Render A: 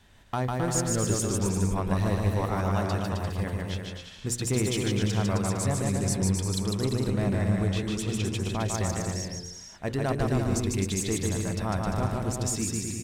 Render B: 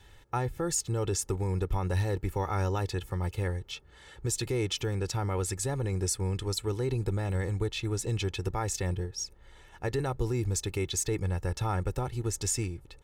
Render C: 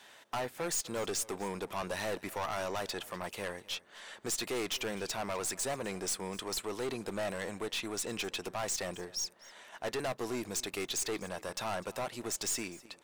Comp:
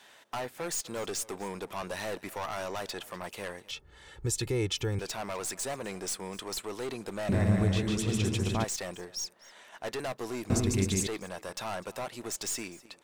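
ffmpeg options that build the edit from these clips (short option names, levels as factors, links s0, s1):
-filter_complex "[0:a]asplit=2[s0][s1];[2:a]asplit=4[s2][s3][s4][s5];[s2]atrim=end=3.712[s6];[1:a]atrim=start=3.708:end=4.992[s7];[s3]atrim=start=4.988:end=7.292[s8];[s0]atrim=start=7.288:end=8.642[s9];[s4]atrim=start=8.638:end=10.502[s10];[s1]atrim=start=10.498:end=11.072[s11];[s5]atrim=start=11.068[s12];[s6][s7]acrossfade=d=0.004:c1=hsin:c2=hsin[s13];[s13][s8]acrossfade=d=0.004:c1=hsin:c2=hsin[s14];[s14][s9]acrossfade=d=0.004:c1=hsin:c2=hsin[s15];[s15][s10]acrossfade=d=0.004:c1=hsin:c2=hsin[s16];[s16][s11]acrossfade=d=0.004:c1=hsin:c2=hsin[s17];[s17][s12]acrossfade=d=0.004:c1=hsin:c2=hsin"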